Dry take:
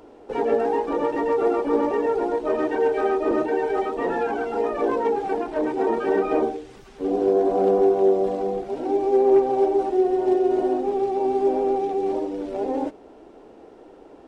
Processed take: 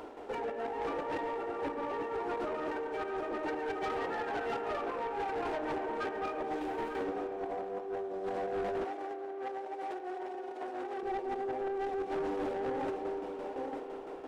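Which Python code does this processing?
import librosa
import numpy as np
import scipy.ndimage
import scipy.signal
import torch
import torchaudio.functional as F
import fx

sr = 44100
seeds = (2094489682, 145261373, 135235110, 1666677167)

y = scipy.ndimage.median_filter(x, 9, mode='constant')
y = fx.high_shelf(y, sr, hz=2800.0, db=-9.0)
y = y + 10.0 ** (-13.0 / 20.0) * np.pad(y, (int(899 * sr / 1000.0), 0))[:len(y)]
y = fx.tremolo_shape(y, sr, shape='saw_down', hz=5.9, depth_pct=65)
y = fx.tilt_shelf(y, sr, db=-7.5, hz=690.0)
y = fx.over_compress(y, sr, threshold_db=-34.0, ratio=-1.0)
y = fx.rev_spring(y, sr, rt60_s=3.9, pass_ms=(33,), chirp_ms=75, drr_db=7.5)
y = 10.0 ** (-30.5 / 20.0) * np.tanh(y / 10.0 ** (-30.5 / 20.0))
y = fx.highpass(y, sr, hz=530.0, slope=6, at=(8.84, 11.03))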